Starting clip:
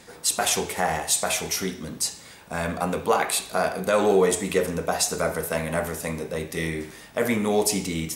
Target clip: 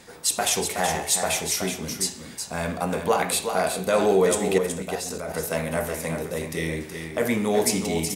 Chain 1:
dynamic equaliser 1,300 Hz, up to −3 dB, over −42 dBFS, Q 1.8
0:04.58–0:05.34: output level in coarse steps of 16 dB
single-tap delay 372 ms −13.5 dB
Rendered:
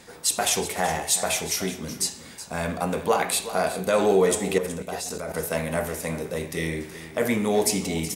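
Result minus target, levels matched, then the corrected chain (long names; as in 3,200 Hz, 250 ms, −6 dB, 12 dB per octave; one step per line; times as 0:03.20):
echo-to-direct −6.5 dB
dynamic equaliser 1,300 Hz, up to −3 dB, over −42 dBFS, Q 1.8
0:04.58–0:05.34: output level in coarse steps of 16 dB
single-tap delay 372 ms −7 dB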